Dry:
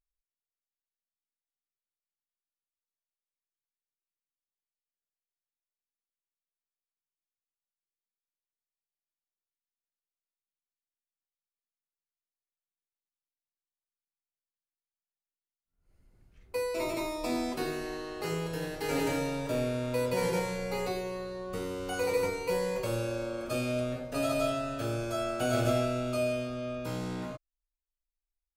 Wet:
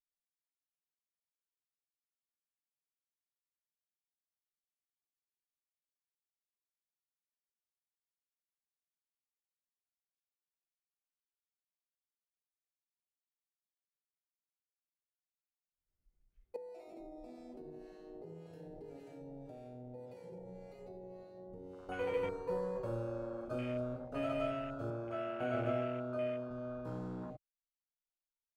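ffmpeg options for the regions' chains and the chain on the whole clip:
-filter_complex "[0:a]asettb=1/sr,asplit=3[s0][s1][s2];[s0]atrim=end=16.564[s3];[s1]atrim=start=16.56:end=21.89,asetpts=PTS-STARTPTS,afade=t=in:d=0.004:c=qsin,afade=t=out:st=5.326:d=0.004:c=qsin,acrossover=split=820[s4][s5];[s4]aeval=exprs='val(0)*(1-0.7/2+0.7/2*cos(2*PI*1.8*n/s))':c=same[s6];[s5]aeval=exprs='val(0)*(1-0.7/2-0.7/2*cos(2*PI*1.8*n/s))':c=same[s7];[s6][s7]amix=inputs=2:normalize=0,acompressor=threshold=0.0126:ratio=12:attack=3.2:release=140:knee=1:detection=peak[s8];[s2]atrim=start=21.886[s9];[s3][s8]acrossfade=d=0.004:c1=hsin:c2=qsin[s10];[s10][s9]acrossfade=d=0.004:c1=qsin:c2=hsin,asettb=1/sr,asplit=3[s11][s12][s13];[s11]atrim=end=24.904[s14];[s12]atrim=start=24.9:end=26.51,asetpts=PTS-STARTPTS,afade=t=in:d=0.004:c=qsin,afade=t=out:st=1.606:d=0.004:c=qsin,highpass=68,bass=f=250:g=-3,treble=f=4000:g=-8[s15];[s13]atrim=start=26.506[s16];[s14][s15]acrossfade=d=0.004:c1=hsin:c2=qsin[s17];[s17][s16]acrossfade=d=0.004:c1=qsin:c2=hsin,afwtdn=0.0126,highshelf=f=11000:g=-9,volume=0.473"

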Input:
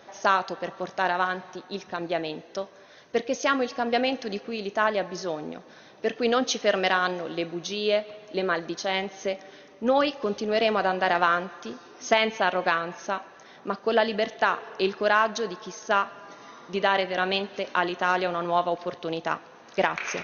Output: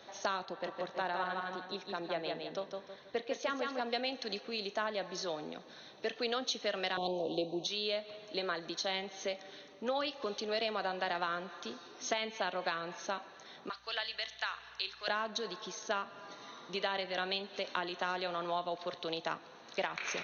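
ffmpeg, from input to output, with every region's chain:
-filter_complex "[0:a]asettb=1/sr,asplit=3[s0][s1][s2];[s0]atrim=end=0.454[s3];[s1]atrim=start=0.45:end=3.81,asetpts=PTS-STARTPTS,afade=t=in:d=0.004:c=qsin,afade=t=out:st=3.356:d=0.004:c=qsin,aemphasis=mode=reproduction:type=75kf,aecho=1:1:160|320|480|640:0.562|0.186|0.0612|0.0202,atrim=end_sample=148176[s4];[s2]atrim=start=3.806[s5];[s3][s4]acrossfade=d=0.004:c1=hsin:c2=qsin[s6];[s6][s5]acrossfade=d=0.004:c1=qsin:c2=hsin,asettb=1/sr,asplit=3[s7][s8][s9];[s7]atrim=end=6.974[s10];[s8]atrim=start=6.97:end=7.67,asetpts=PTS-STARTPTS,afade=t=in:d=0.004:c=qsin,afade=t=out:st=0.696:d=0.004:c=qsin,tiltshelf=f=860:g=8,acontrast=55,asuperstop=centerf=1600:order=8:qfactor=0.88[s11];[s9]atrim=start=7.666[s12];[s10][s11]acrossfade=d=0.004:c1=hsin:c2=qsin[s13];[s13][s12]acrossfade=d=0.004:c1=qsin:c2=hsin,asettb=1/sr,asplit=3[s14][s15][s16];[s14]atrim=end=13.694[s17];[s15]atrim=start=13.69:end=15.08,asetpts=PTS-STARTPTS,afade=t=in:d=0.004:c=qsin,afade=t=out:st=1.386:d=0.004:c=qsin,highpass=1500,aeval=exprs='val(0)+0.000562*(sin(2*PI*60*n/s)+sin(2*PI*2*60*n/s)/2+sin(2*PI*3*60*n/s)/3+sin(2*PI*4*60*n/s)/4+sin(2*PI*5*60*n/s)/5)':c=same[s18];[s16]atrim=start=15.076[s19];[s17][s18]acrossfade=d=0.004:c1=hsin:c2=qsin[s20];[s20][s19]acrossfade=d=0.004:c1=qsin:c2=hsin,equalizer=f=4100:w=2.2:g=10.5,bandreject=f=4900:w=6.2,acrossover=split=210|480[s21][s22][s23];[s21]acompressor=threshold=0.00316:ratio=4[s24];[s22]acompressor=threshold=0.01:ratio=4[s25];[s23]acompressor=threshold=0.0398:ratio=4[s26];[s24][s25][s26]amix=inputs=3:normalize=0,volume=0.531"

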